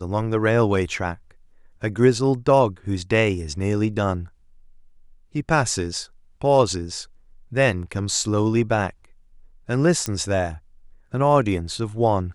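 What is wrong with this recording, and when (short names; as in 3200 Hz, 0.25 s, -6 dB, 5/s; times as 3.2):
10.06 pop -9 dBFS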